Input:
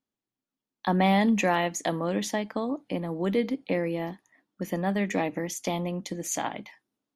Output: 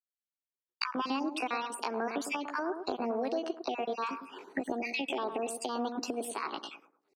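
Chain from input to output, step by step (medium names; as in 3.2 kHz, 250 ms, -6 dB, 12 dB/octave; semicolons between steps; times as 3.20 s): random holes in the spectrogram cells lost 36%; recorder AGC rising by 51 dB/s; Bessel high-pass 190 Hz, order 6; gate -56 dBFS, range -58 dB; peaking EQ 8.8 kHz +4 dB 0.62 oct; compression 8:1, threshold -27 dBFS, peak gain reduction 10.5 dB; pitch shift +5.5 st; distance through air 63 m; bucket-brigade echo 106 ms, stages 1024, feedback 30%, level -7.5 dB; trim -2 dB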